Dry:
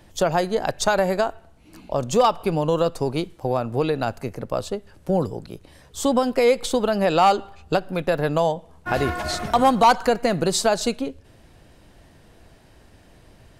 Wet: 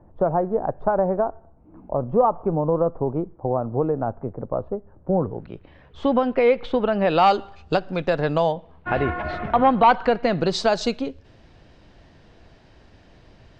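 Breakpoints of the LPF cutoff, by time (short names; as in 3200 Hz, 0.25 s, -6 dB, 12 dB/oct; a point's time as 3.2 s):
LPF 24 dB/oct
5.1 s 1100 Hz
5.51 s 2900 Hz
6.95 s 2900 Hz
7.38 s 5700 Hz
8.2 s 5700 Hz
9.09 s 2600 Hz
9.66 s 2600 Hz
10.74 s 5700 Hz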